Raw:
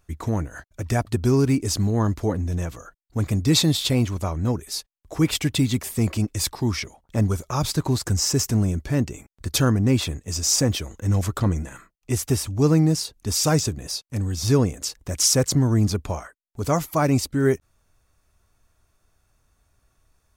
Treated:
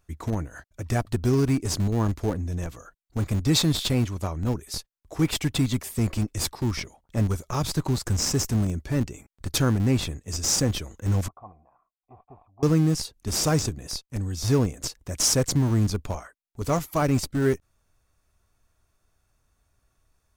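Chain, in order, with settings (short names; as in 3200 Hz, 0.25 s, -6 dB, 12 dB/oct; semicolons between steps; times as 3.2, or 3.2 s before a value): in parallel at -7.5 dB: Schmitt trigger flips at -19 dBFS; 11.28–12.63 on the sum: vocal tract filter a; gain -4 dB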